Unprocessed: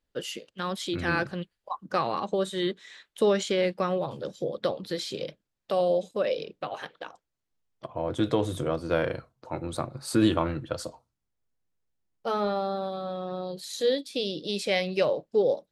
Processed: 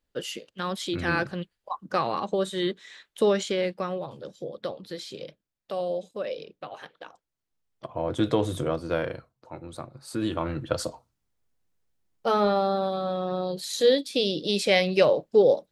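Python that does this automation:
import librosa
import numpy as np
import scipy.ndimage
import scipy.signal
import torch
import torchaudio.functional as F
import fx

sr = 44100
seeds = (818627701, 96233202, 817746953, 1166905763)

y = fx.gain(x, sr, db=fx.line((3.26, 1.0), (4.13, -5.0), (6.8, -5.0), (7.97, 1.5), (8.64, 1.5), (9.56, -7.0), (10.24, -7.0), (10.72, 5.0)))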